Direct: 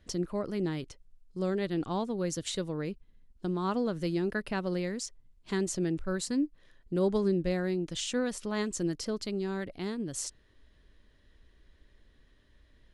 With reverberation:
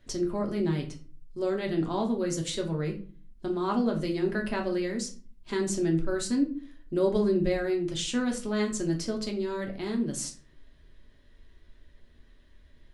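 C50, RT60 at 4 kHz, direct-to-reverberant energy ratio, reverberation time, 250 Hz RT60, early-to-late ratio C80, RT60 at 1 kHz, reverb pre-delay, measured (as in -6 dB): 11.0 dB, 0.30 s, 0.5 dB, 0.40 s, 0.60 s, 16.0 dB, 0.40 s, 3 ms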